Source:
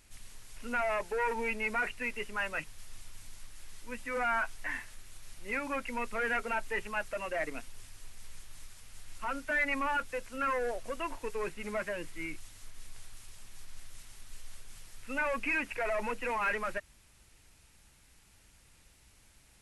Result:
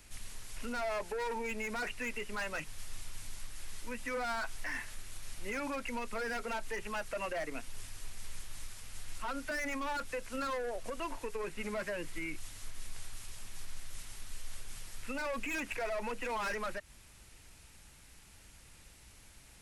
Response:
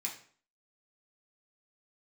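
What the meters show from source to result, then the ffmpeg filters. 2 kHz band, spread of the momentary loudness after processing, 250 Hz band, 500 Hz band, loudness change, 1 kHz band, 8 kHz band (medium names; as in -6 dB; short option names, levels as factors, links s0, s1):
-5.5 dB, 20 LU, -1.0 dB, -2.5 dB, -5.5 dB, -4.5 dB, +3.5 dB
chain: -filter_complex "[0:a]acrossover=split=210|660|4600[s0][s1][s2][s3];[s2]asoftclip=type=hard:threshold=0.015[s4];[s0][s1][s4][s3]amix=inputs=4:normalize=0,alimiter=level_in=3.16:limit=0.0631:level=0:latency=1:release=159,volume=0.316,volume=1.68"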